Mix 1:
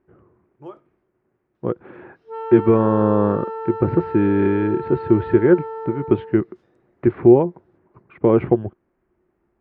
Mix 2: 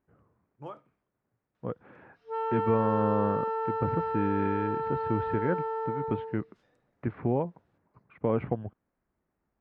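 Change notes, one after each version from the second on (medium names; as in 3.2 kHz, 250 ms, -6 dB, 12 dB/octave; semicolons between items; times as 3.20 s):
second voice -9.0 dB; master: add peaking EQ 360 Hz -14.5 dB 0.26 oct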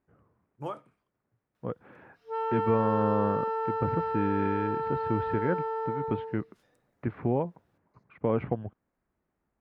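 first voice +5.5 dB; master: remove distance through air 92 m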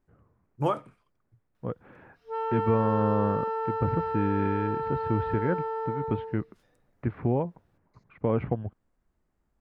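first voice +9.5 dB; master: remove high-pass 140 Hz 6 dB/octave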